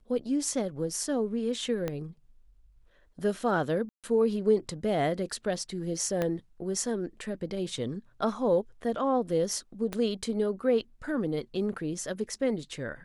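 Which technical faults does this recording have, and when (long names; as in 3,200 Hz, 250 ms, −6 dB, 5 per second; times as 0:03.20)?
0:01.88: click −18 dBFS
0:03.89–0:04.04: drop-out 147 ms
0:06.22: click −16 dBFS
0:09.93: click −18 dBFS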